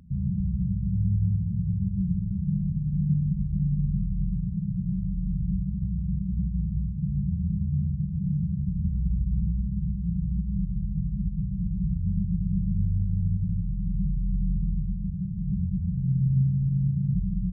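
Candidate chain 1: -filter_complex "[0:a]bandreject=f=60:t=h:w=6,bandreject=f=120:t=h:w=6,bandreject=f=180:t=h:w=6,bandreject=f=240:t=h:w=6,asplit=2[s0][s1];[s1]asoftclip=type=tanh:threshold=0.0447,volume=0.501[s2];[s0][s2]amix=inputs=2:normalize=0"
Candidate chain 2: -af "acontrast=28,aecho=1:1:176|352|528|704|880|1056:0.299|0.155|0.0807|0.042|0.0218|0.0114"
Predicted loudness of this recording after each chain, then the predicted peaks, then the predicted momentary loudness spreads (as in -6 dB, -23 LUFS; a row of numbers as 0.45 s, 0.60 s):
-26.5 LUFS, -22.5 LUFS; -13.5 dBFS, -8.5 dBFS; 5 LU, 5 LU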